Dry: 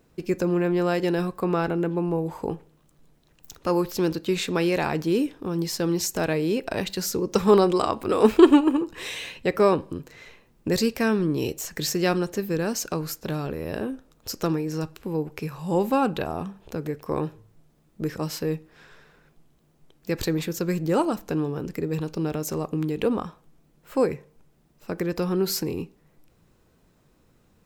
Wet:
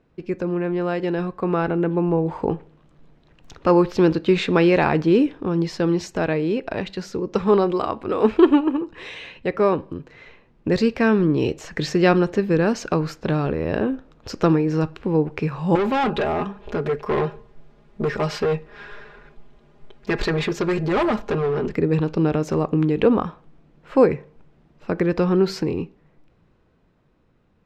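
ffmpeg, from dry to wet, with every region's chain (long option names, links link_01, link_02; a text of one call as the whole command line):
ffmpeg -i in.wav -filter_complex "[0:a]asettb=1/sr,asplit=3[link_01][link_02][link_03];[link_01]atrim=end=15.754[link_04];[link_02]atrim=start=15.75:end=21.73,asetpts=PTS-STARTPTS,afade=type=in:duration=0.004:curve=qsin,afade=type=out:start_time=5.976:duration=0.004:curve=qsin,equalizer=frequency=180:width_type=o:width=0.36:gain=-14.5,aecho=1:1:4.9:0.95,atrim=end_sample=263718,asoftclip=type=hard:threshold=-26.5dB[link_05];[link_03]atrim=start=21.726[link_06];[link_04][link_05]acrossfade=duration=0.004:curve1=hsin:curve2=qsin[link_07];[link_07][link_06]acrossfade=duration=0.004:curve1=qsin:curve2=hsin,lowpass=3000,dynaudnorm=framelen=120:gausssize=31:maxgain=10.5dB,volume=-1dB" out.wav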